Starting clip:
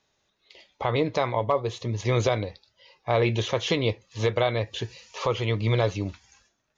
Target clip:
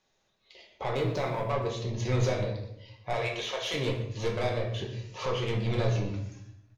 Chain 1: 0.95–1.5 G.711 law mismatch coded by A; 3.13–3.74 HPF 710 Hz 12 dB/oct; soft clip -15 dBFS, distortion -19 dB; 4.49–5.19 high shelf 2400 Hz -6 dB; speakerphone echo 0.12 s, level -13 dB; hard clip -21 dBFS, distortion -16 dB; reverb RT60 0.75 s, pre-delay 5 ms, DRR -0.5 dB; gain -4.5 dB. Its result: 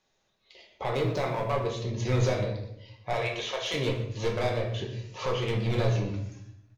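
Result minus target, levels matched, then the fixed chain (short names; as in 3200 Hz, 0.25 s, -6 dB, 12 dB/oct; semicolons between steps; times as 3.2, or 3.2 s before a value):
soft clip: distortion -8 dB
0.95–1.5 G.711 law mismatch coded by A; 3.13–3.74 HPF 710 Hz 12 dB/oct; soft clip -22 dBFS, distortion -11 dB; 4.49–5.19 high shelf 2400 Hz -6 dB; speakerphone echo 0.12 s, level -13 dB; hard clip -21 dBFS, distortion -67 dB; reverb RT60 0.75 s, pre-delay 5 ms, DRR -0.5 dB; gain -4.5 dB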